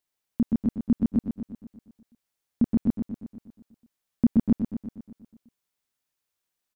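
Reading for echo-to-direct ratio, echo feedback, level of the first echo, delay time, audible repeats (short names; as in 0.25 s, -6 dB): -5.0 dB, 59%, -7.0 dB, 0.12 s, 7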